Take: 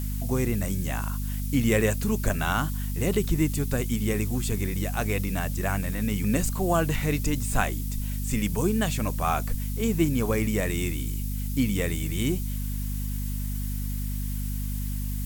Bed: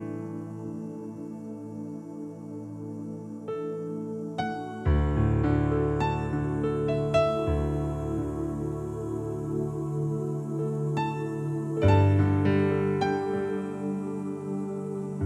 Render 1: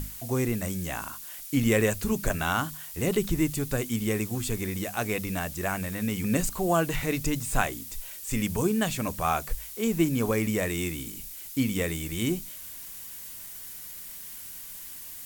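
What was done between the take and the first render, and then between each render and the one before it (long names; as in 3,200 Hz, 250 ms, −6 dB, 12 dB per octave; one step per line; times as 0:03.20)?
mains-hum notches 50/100/150/200/250 Hz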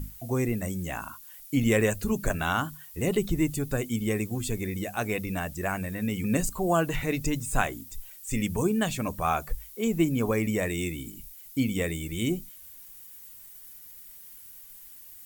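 broadband denoise 11 dB, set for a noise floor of −42 dBFS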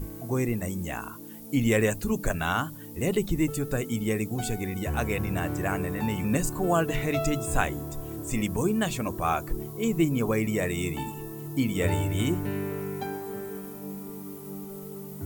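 mix in bed −7.5 dB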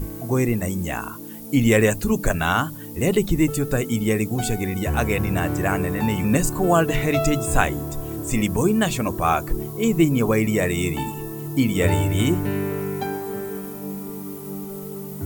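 level +6.5 dB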